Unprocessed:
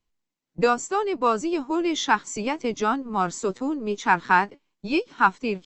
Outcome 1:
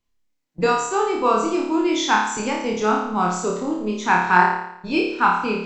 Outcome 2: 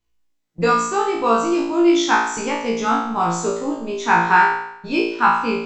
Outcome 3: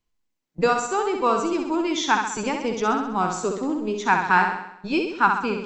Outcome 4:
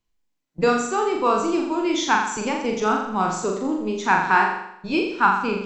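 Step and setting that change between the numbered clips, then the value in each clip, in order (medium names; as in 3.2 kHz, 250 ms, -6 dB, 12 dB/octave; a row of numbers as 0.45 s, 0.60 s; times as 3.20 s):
flutter echo, walls apart: 4.8 m, 3 m, 11.2 m, 7.2 m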